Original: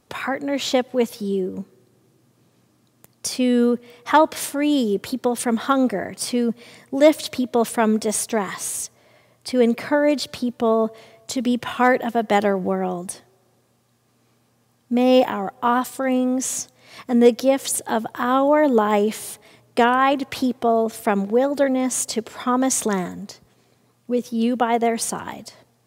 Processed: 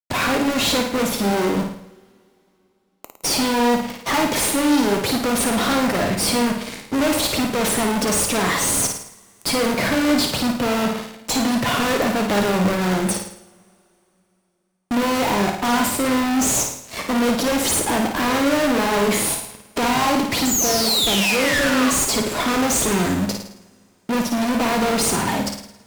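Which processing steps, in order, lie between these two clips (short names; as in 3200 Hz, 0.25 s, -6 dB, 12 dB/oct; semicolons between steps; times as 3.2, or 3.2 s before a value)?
bin magnitudes rounded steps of 15 dB; 8.84–9.69 tilt +2.5 dB/oct; 20.45–21.91 painted sound fall 1100–7700 Hz -22 dBFS; in parallel at -6.5 dB: sample-and-hold 26×; on the sum: fuzz box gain 36 dB, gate -42 dBFS; on a send: flutter echo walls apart 9.3 m, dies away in 0.6 s; on the sum: two-slope reverb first 0.47 s, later 3.1 s, from -21 dB, DRR 10.5 dB; gain -6 dB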